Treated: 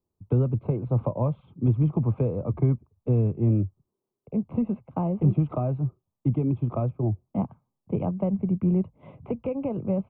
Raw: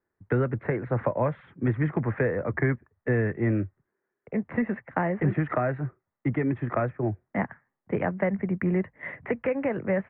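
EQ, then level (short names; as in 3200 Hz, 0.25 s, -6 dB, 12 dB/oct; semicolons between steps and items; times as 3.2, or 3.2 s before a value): Butterworth band-stop 1800 Hz, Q 1.1; tone controls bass +10 dB, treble +2 dB; notch 1400 Hz, Q 8.8; -4.0 dB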